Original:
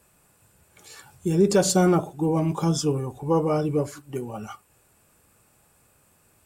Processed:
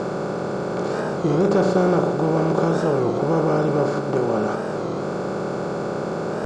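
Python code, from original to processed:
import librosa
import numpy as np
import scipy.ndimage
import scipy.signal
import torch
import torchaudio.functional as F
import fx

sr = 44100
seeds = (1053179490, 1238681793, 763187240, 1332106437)

y = fx.bin_compress(x, sr, power=0.2)
y = scipy.signal.sosfilt(scipy.signal.butter(2, 2500.0, 'lowpass', fs=sr, output='sos'), y)
y = fx.record_warp(y, sr, rpm=33.33, depth_cents=160.0)
y = y * 10.0 ** (-4.0 / 20.0)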